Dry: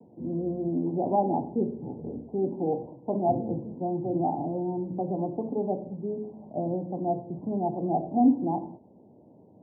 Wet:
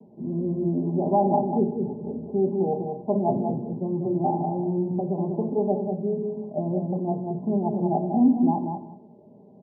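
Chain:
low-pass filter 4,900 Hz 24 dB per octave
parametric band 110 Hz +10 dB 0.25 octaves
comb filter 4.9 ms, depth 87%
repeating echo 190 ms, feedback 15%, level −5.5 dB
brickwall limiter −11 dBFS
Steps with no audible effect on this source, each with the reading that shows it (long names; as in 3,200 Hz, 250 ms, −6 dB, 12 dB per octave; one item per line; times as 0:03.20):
low-pass filter 4,900 Hz: nothing at its input above 960 Hz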